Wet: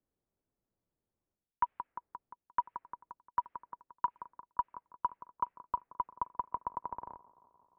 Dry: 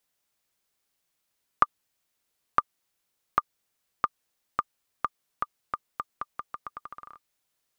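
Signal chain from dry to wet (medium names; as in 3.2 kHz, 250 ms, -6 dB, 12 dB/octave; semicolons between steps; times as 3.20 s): level-controlled noise filter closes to 540 Hz, open at -27 dBFS; feedback echo behind a band-pass 175 ms, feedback 71%, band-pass 610 Hz, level -21 dB; mistuned SSB -230 Hz 180–2700 Hz; reverse; compression 6:1, threshold -35 dBFS, peak gain reduction 17.5 dB; reverse; trim +5.5 dB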